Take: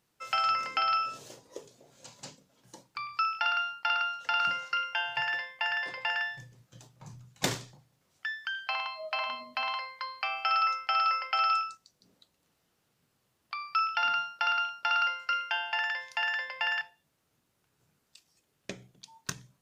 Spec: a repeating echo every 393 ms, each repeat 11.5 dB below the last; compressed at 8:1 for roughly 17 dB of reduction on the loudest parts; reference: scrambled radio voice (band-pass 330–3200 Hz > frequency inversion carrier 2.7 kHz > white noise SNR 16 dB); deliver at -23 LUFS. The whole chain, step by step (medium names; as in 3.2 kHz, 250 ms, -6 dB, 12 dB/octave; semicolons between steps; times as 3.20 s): compression 8:1, threshold -43 dBFS; band-pass 330–3200 Hz; feedback delay 393 ms, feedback 27%, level -11.5 dB; frequency inversion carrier 2.7 kHz; white noise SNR 16 dB; trim +24 dB